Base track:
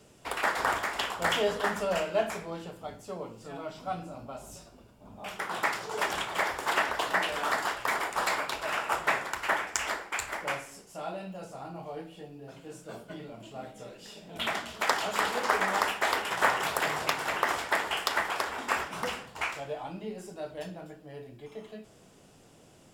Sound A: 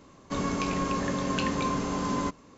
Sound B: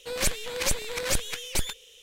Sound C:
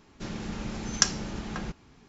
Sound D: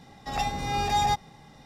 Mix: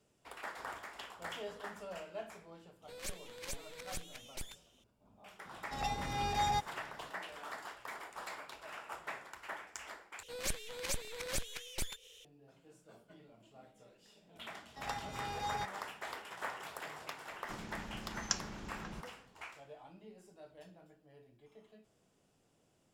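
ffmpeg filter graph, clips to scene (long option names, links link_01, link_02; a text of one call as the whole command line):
ffmpeg -i bed.wav -i cue0.wav -i cue1.wav -i cue2.wav -i cue3.wav -filter_complex "[2:a]asplit=2[link_01][link_02];[4:a]asplit=2[link_03][link_04];[0:a]volume=-16.5dB[link_05];[link_02]acompressor=mode=upward:threshold=-37dB:ratio=2.5:attack=3.2:release=140:knee=2.83:detection=peak[link_06];[link_04]highpass=50[link_07];[link_05]asplit=2[link_08][link_09];[link_08]atrim=end=10.234[link_10];[link_06]atrim=end=2.02,asetpts=PTS-STARTPTS,volume=-11.5dB[link_11];[link_09]atrim=start=12.246[link_12];[link_01]atrim=end=2.02,asetpts=PTS-STARTPTS,volume=-17.5dB,afade=type=in:duration=0.004:curve=hsin,afade=type=out:start_time=2.016:duration=0.004:curve=hsin,adelay=2820[link_13];[link_03]atrim=end=1.65,asetpts=PTS-STARTPTS,volume=-8.5dB,afade=type=in:duration=0.004:curve=hsin,afade=type=out:start_time=1.646:duration=0.004:curve=hsin,adelay=240345S[link_14];[link_07]atrim=end=1.65,asetpts=PTS-STARTPTS,volume=-15dB,afade=type=in:duration=0.004:curve=hsin,afade=type=out:start_time=1.646:duration=0.004:curve=hsin,adelay=14500[link_15];[3:a]atrim=end=2.08,asetpts=PTS-STARTPTS,volume=-12dB,afade=type=in:duration=0.004:curve=hsin,afade=type=out:start_time=2.076:duration=0.004:curve=hsin,adelay=17290[link_16];[link_10][link_11]acrossfade=duration=0.004:curve1=hsin:curve2=hsin[link_17];[link_17][link_12]acrossfade=duration=0.004:curve1=hsin:curve2=hsin[link_18];[link_18][link_13][link_14][link_15][link_16]amix=inputs=5:normalize=0" out.wav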